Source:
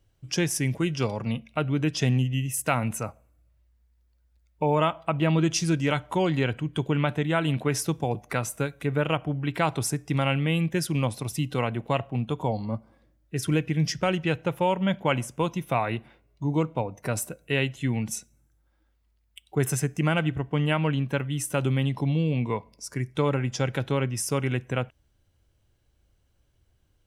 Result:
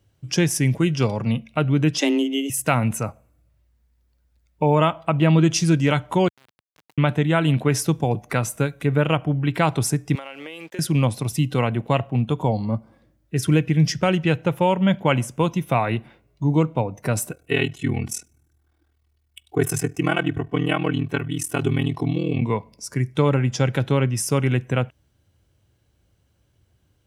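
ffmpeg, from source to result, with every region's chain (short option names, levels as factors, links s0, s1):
-filter_complex "[0:a]asettb=1/sr,asplit=3[s0][s1][s2];[s0]atrim=end=1.984[s3];[s1]atrim=start=1.98:end=2.5,asetpts=PTS-STARTPTS,afade=t=in:d=0.004:c=qsin,afade=t=out:st=0.516:d=0.004:c=qsin,tiltshelf=f=630:g=-4,afreqshift=140[s4];[s2]atrim=start=2.496[s5];[s3][s4]acrossfade=d=0.004:c1=hsin:c2=qsin[s6];[s6][s5]acrossfade=d=0.004:c1=qsin:c2=hsin,asettb=1/sr,asplit=3[s7][s8][s9];[s7]atrim=end=6.284[s10];[s8]atrim=start=6.28:end=6.98,asetpts=PTS-STARTPTS,afade=t=in:d=0.004:c=qsin,afade=t=out:st=0.696:d=0.004:c=qsin,bandpass=f=910:t=q:w=7.8,acompressor=threshold=0.00282:ratio=6:attack=3.2:release=140:knee=1:detection=peak,aeval=exprs='val(0)*gte(abs(val(0)),0.00531)':c=same[s11];[s9]atrim=start=6.976[s12];[s10][s11]acrossfade=d=0.004:c1=hsin:c2=qsin[s13];[s13][s12]acrossfade=d=0.004:c1=qsin:c2=hsin,asettb=1/sr,asplit=3[s14][s15][s16];[s14]atrim=end=10.154[s17];[s15]atrim=start=10.15:end=10.79,asetpts=PTS-STARTPTS,afade=t=in:d=0.004:c=qsin,afade=t=out:st=0.636:d=0.004:c=qsin,highpass=f=350:w=0.5412,highpass=f=350:w=1.3066,aeval=exprs='sgn(val(0))*max(abs(val(0))-0.00211,0)':c=same,acompressor=threshold=0.0158:ratio=8:attack=3.2:release=140:knee=1:detection=peak[s18];[s16]atrim=start=10.786[s19];[s17][s18]acrossfade=d=0.004:c1=hsin:c2=qsin[s20];[s20][s19]acrossfade=d=0.004:c1=qsin:c2=hsin,asettb=1/sr,asplit=3[s21][s22][s23];[s21]atrim=end=17.314[s24];[s22]atrim=start=17.31:end=22.42,asetpts=PTS-STARTPTS,afade=t=in:d=0.004:c=qsin,afade=t=out:st=5.106:d=0.004:c=qsin,aecho=1:1:2.7:0.72,atrim=end_sample=225351,aeval=exprs='val(0)*sin(2*PI*20*n/s)':c=same[s25];[s23]atrim=start=22.416[s26];[s24][s25]acrossfade=d=0.004:c1=hsin:c2=qsin[s27];[s27][s26]acrossfade=d=0.004:c1=qsin:c2=hsin,highpass=98,lowshelf=f=180:g=7,volume=1.58"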